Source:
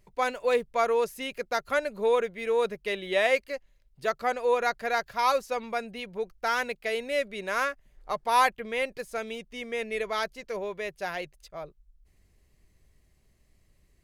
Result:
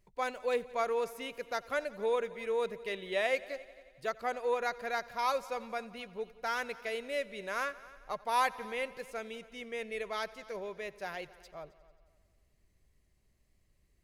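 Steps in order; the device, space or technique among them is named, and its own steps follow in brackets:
multi-head tape echo (echo machine with several playback heads 89 ms, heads all three, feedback 46%, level −23 dB; tape wow and flutter 9.6 cents)
level −7 dB

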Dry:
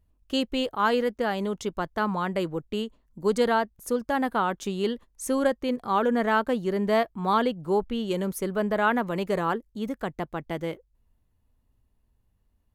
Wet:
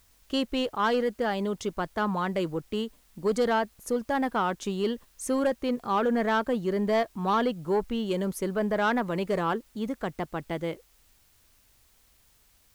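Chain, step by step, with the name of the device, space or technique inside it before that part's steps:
compact cassette (soft clipping −17 dBFS, distortion −17 dB; low-pass filter 11,000 Hz; tape wow and flutter 20 cents; white noise bed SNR 35 dB)

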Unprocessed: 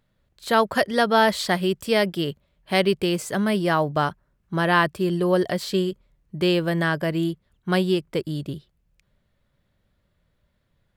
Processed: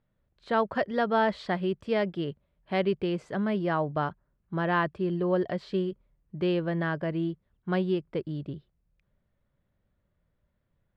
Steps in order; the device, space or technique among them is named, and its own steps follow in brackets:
phone in a pocket (low-pass filter 3,900 Hz 12 dB per octave; high-shelf EQ 2,500 Hz −10 dB)
level −5.5 dB

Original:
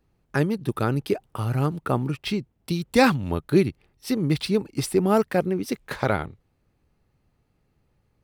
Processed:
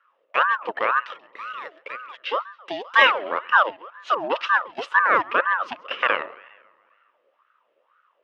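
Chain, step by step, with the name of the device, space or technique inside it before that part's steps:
0:01.02–0:02.30: guitar amp tone stack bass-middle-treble 10-0-10
tape delay 135 ms, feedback 60%, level −19 dB, low-pass 3,100 Hz
voice changer toy (ring modulator whose carrier an LFO sweeps 930 Hz, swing 50%, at 2 Hz; loudspeaker in its box 460–4,500 Hz, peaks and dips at 530 Hz +8 dB, 780 Hz −8 dB, 1,200 Hz +8 dB, 1,800 Hz +4 dB, 2,800 Hz +9 dB, 4,400 Hz −6 dB)
dynamic equaliser 6,400 Hz, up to −5 dB, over −48 dBFS, Q 1.7
level +1.5 dB

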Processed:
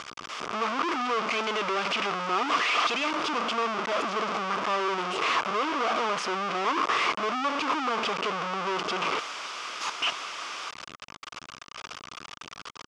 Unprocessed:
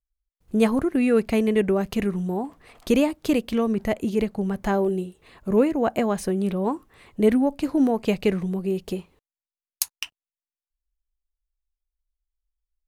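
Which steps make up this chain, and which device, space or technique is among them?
0:01.31–0:03.11: meter weighting curve D
home computer beeper (sign of each sample alone; loudspeaker in its box 520–4,900 Hz, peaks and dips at 540 Hz −4 dB, 800 Hz −4 dB, 1,200 Hz +9 dB, 1,800 Hz −6 dB, 4,100 Hz −9 dB)
level +2 dB

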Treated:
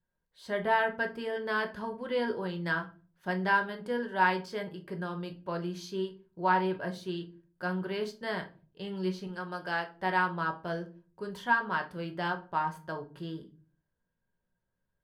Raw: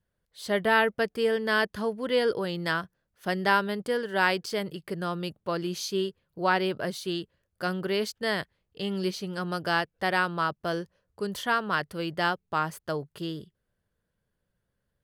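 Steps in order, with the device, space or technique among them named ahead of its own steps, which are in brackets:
inside a helmet (high-shelf EQ 4,800 Hz −10 dB; hollow resonant body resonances 940/1,600 Hz, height 12 dB, ringing for 65 ms)
0:09.27–0:09.91: high-pass filter 360 Hz 6 dB per octave
rectangular room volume 200 cubic metres, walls furnished, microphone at 0.99 metres
level −7.5 dB

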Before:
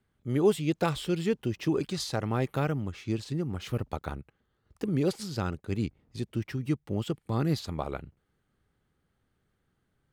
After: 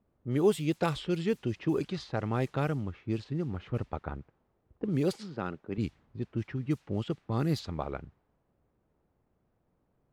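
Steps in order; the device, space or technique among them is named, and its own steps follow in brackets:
0:05.19–0:05.78: high-pass filter 180 Hz 12 dB per octave
cassette deck with a dynamic noise filter (white noise bed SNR 29 dB; low-pass that shuts in the quiet parts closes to 550 Hz, open at −22.5 dBFS)
level −1.5 dB

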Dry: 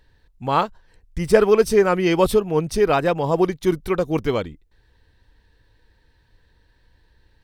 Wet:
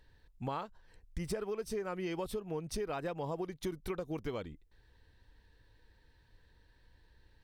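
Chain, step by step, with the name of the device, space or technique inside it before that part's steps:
serial compression, leveller first (downward compressor 2 to 1, threshold −18 dBFS, peak gain reduction 6 dB; downward compressor 6 to 1, threshold −29 dBFS, peak gain reduction 15 dB)
level −6 dB

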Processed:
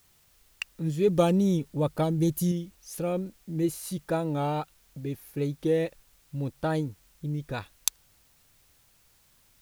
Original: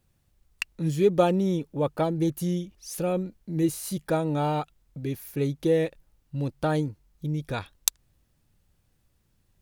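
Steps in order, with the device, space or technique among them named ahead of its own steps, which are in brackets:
0:01.08–0:02.52: bass and treble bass +6 dB, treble +8 dB
plain cassette with noise reduction switched in (one half of a high-frequency compander decoder only; tape wow and flutter; white noise bed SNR 34 dB)
level −2.5 dB

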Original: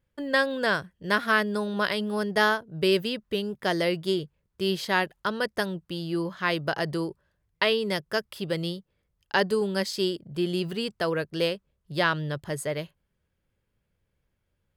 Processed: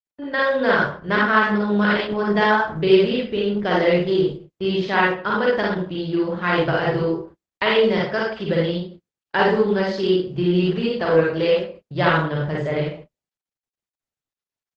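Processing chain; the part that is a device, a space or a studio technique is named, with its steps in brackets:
0:11.17–0:11.92: high-pass filter 47 Hz 6 dB per octave
high-frequency loss of the air 250 metres
speakerphone in a meeting room (convolution reverb RT60 0.45 s, pre-delay 39 ms, DRR −4.5 dB; far-end echo of a speakerphone 80 ms, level −19 dB; automatic gain control gain up to 4 dB; noise gate −38 dBFS, range −36 dB; Opus 12 kbit/s 48,000 Hz)

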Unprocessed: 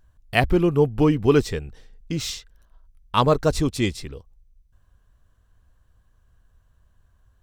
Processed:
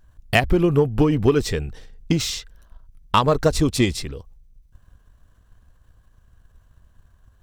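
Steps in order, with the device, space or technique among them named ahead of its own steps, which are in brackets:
drum-bus smash (transient designer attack +9 dB, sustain +5 dB; downward compressor 6 to 1, threshold −14 dBFS, peak gain reduction 9.5 dB; soft clipping −7 dBFS, distortion −20 dB)
level +2.5 dB

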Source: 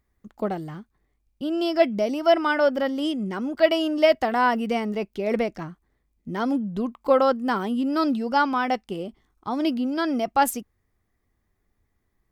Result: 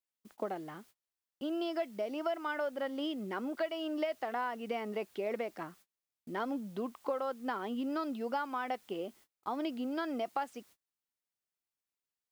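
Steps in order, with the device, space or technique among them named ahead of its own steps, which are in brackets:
baby monitor (band-pass filter 330–3,700 Hz; downward compressor 8 to 1, threshold −28 dBFS, peak gain reduction 15.5 dB; white noise bed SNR 28 dB; noise gate −54 dBFS, range −29 dB)
level −4 dB

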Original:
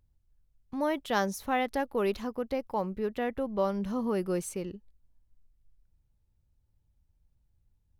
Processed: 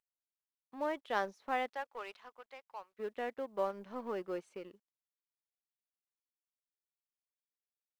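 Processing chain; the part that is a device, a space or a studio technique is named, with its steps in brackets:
0:01.71–0:02.98: high-pass filter 670 Hz → 1,400 Hz 12 dB per octave
phone line with mismatched companding (band-pass filter 380–3,200 Hz; mu-law and A-law mismatch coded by A)
level −4 dB

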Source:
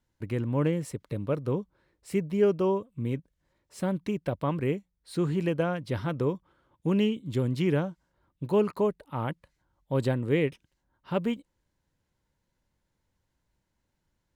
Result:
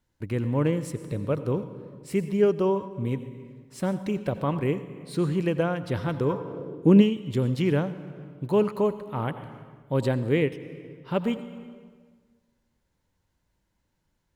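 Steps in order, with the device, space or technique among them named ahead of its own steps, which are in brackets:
compressed reverb return (on a send at −8 dB: convolution reverb RT60 1.5 s, pre-delay 79 ms + downward compressor 5 to 1, threshold −29 dBFS, peak gain reduction 10.5 dB)
0:06.29–0:07.01: on the sum: parametric band 1,100 Hz → 230 Hz +9.5 dB 1.9 octaves
level +2 dB

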